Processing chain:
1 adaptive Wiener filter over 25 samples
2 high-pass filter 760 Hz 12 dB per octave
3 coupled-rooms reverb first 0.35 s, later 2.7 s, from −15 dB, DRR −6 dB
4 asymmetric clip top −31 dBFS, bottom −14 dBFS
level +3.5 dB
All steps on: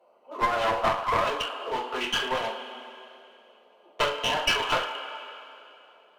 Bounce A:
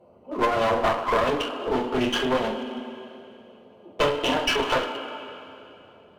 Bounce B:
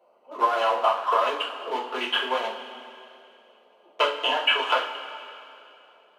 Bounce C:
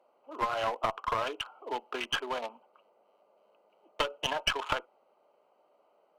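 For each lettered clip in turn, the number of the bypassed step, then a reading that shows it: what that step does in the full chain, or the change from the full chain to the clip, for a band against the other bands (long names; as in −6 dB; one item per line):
2, change in crest factor −3.5 dB
4, distortion level −8 dB
3, change in momentary loudness spread −10 LU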